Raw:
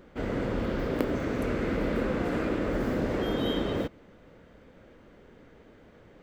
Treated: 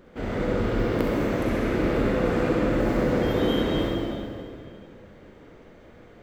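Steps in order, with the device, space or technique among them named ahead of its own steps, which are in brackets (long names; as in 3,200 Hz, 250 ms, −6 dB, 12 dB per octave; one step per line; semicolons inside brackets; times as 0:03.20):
tunnel (flutter between parallel walls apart 11.2 metres, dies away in 0.48 s; convolution reverb RT60 2.2 s, pre-delay 34 ms, DRR −2.5 dB)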